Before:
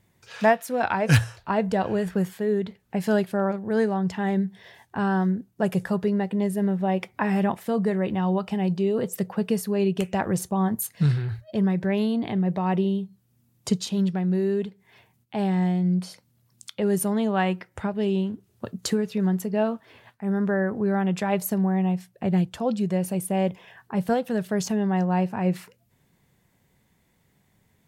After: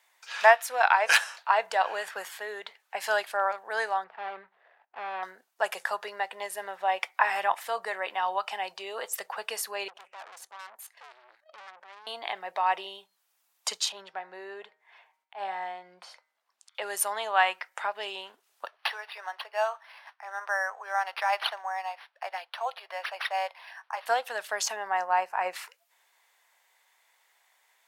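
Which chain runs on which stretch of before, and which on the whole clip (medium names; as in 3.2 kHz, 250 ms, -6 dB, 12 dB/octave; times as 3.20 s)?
4.04–5.23 s: median filter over 41 samples + distance through air 450 m
9.88–12.07 s: treble shelf 3 kHz -10.5 dB + level held to a coarse grid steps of 11 dB + valve stage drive 41 dB, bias 0.4
13.92–16.75 s: low-pass 1.3 kHz 6 dB/octave + de-hum 155.7 Hz, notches 15 + slow attack 103 ms
18.66–24.06 s: high-pass 600 Hz 24 dB/octave + decimation joined by straight lines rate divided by 6×
24.76–25.53 s: peaking EQ 3.5 kHz -11.5 dB 0.59 oct + transient shaper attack +6 dB, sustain -4 dB
whole clip: high-pass 770 Hz 24 dB/octave; treble shelf 10 kHz -6.5 dB; trim +5.5 dB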